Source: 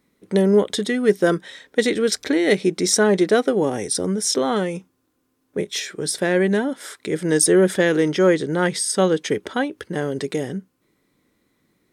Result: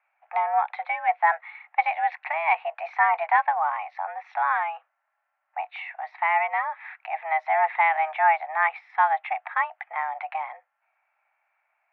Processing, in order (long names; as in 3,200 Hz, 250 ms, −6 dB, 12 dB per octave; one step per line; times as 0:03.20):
single-sideband voice off tune +320 Hz 510–2,100 Hz
level +1 dB